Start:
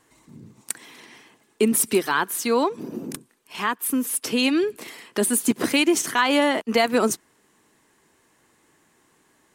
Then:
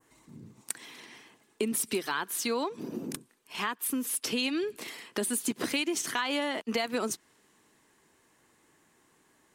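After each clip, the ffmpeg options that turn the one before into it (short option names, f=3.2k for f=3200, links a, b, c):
-af "adynamicequalizer=threshold=0.0126:dfrequency=3900:dqfactor=0.72:tfrequency=3900:tqfactor=0.72:attack=5:release=100:ratio=0.375:range=2.5:mode=boostabove:tftype=bell,acompressor=threshold=-25dB:ratio=3,volume=-4dB"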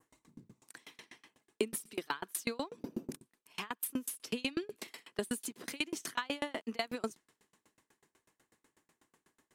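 -af "aeval=exprs='val(0)*pow(10,-32*if(lt(mod(8.1*n/s,1),2*abs(8.1)/1000),1-mod(8.1*n/s,1)/(2*abs(8.1)/1000),(mod(8.1*n/s,1)-2*abs(8.1)/1000)/(1-2*abs(8.1)/1000))/20)':c=same,volume=1dB"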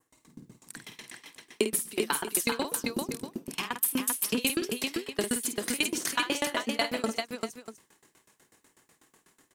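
-af "highshelf=f=4.1k:g=5.5,dynaudnorm=f=100:g=3:m=8dB,aecho=1:1:50|137|392|641:0.398|0.112|0.668|0.224,volume=-2.5dB"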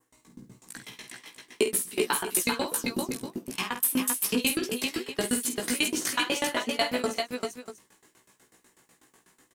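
-filter_complex "[0:a]asplit=2[a][b];[b]adelay=16,volume=-2.5dB[c];[a][c]amix=inputs=2:normalize=0"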